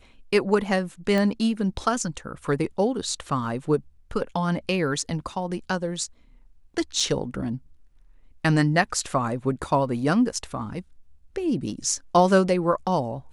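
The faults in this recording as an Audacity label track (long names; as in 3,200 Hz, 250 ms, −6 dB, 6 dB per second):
1.180000	1.180000	click −13 dBFS
7.000000	7.000000	drop-out 3.6 ms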